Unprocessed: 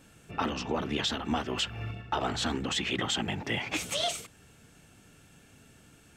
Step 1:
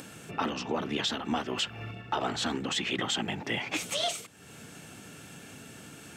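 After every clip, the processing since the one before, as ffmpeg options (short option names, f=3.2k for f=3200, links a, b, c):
-af "highpass=130,acompressor=mode=upward:threshold=-36dB:ratio=2.5"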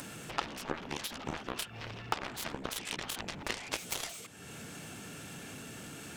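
-af "acompressor=threshold=-37dB:ratio=16,aeval=exprs='0.0668*(cos(1*acos(clip(val(0)/0.0668,-1,1)))-cos(1*PI/2))+0.015*(cos(7*acos(clip(val(0)/0.0668,-1,1)))-cos(7*PI/2))':c=same,volume=8.5dB"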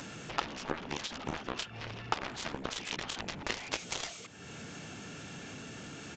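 -af "aresample=16000,aresample=44100,volume=1dB"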